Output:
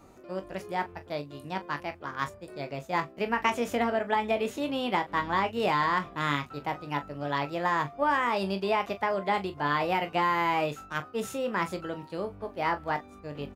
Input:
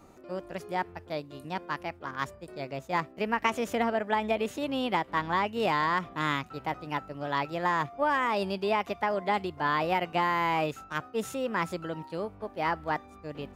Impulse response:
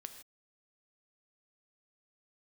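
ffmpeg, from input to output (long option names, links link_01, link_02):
-af "aecho=1:1:21|41:0.335|0.211"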